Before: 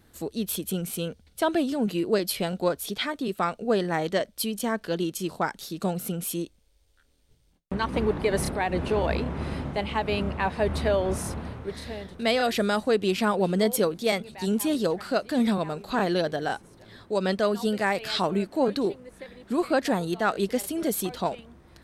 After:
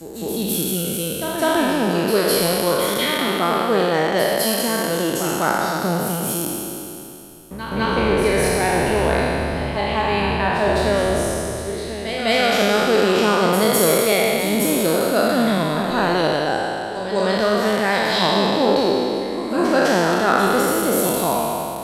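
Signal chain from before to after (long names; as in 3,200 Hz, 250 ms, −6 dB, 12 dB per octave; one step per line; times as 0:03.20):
peak hold with a decay on every bin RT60 2.92 s
backwards echo 205 ms −8.5 dB
level +2 dB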